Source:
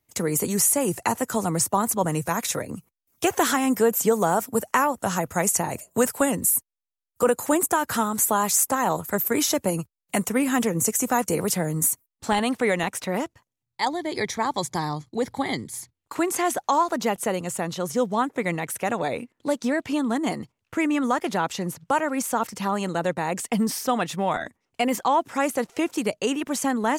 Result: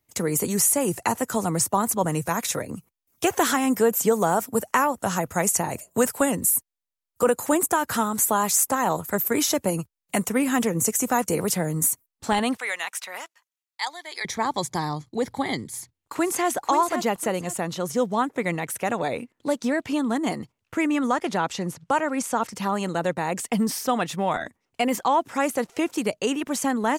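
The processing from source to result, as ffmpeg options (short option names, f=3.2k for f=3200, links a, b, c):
-filter_complex "[0:a]asettb=1/sr,asplit=3[a][b][c];[a]atrim=end=12.574[d];[b]atrim=start=12.57:end=14.25,asetpts=PTS-STARTPTS,afade=t=in:d=0.004:c=qsin,afade=t=out:st=1.676:d=0.004:c=qsin,highpass=1.2k[e];[c]atrim=start=14.246[f];[d][e]acrossfade=d=0.004:c1=hsin:c2=qsin[g];[g][f]acrossfade=d=0.004:c1=qsin:c2=hsin,asplit=2[h][i];[i]afade=t=in:st=15.68:d=0.01,afade=t=out:st=16.49:d=0.01,aecho=0:1:520|1040|1560:0.421697|0.105424|0.026356[j];[h][j]amix=inputs=2:normalize=0,asettb=1/sr,asplit=3[k][l][m];[k]atrim=end=21.074[n];[l]atrim=start=21.07:end=22.53,asetpts=PTS-STARTPTS,afade=t=in:d=0.004:c=qsin,afade=t=out:st=1.456:d=0.004:c=qsin,lowpass=10k[o];[m]atrim=start=22.526[p];[n][o]acrossfade=d=0.004:c1=hsin:c2=qsin[q];[q][p]acrossfade=d=0.004:c1=qsin:c2=hsin"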